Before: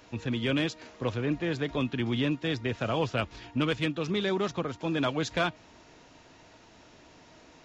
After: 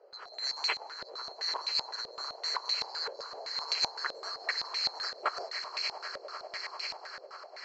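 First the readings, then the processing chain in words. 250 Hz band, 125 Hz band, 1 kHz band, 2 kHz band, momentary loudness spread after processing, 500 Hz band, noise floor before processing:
-32.0 dB, under -35 dB, -1.5 dB, -3.5 dB, 11 LU, -13.5 dB, -56 dBFS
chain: band-swap scrambler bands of 4000 Hz; Chebyshev high-pass 410 Hz, order 4; swelling echo 99 ms, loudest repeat 8, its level -14 dB; stepped low-pass 7.8 Hz 560–2400 Hz; gain +8 dB

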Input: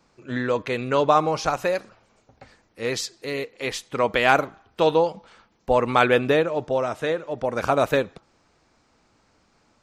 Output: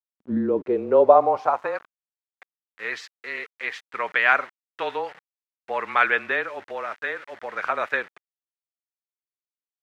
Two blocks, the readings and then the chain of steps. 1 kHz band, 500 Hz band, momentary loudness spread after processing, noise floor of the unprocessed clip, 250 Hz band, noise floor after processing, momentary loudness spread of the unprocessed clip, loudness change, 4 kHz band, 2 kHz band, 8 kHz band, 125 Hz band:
-0.5 dB, -2.0 dB, 16 LU, -64 dBFS, -3.0 dB, under -85 dBFS, 11 LU, -0.5 dB, -7.5 dB, +3.0 dB, under -15 dB, under -10 dB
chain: high shelf 2800 Hz -6 dB; frequency shift -25 Hz; sample gate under -38.5 dBFS; band-pass sweep 220 Hz -> 1800 Hz, 0.19–2.15; gain +7.5 dB

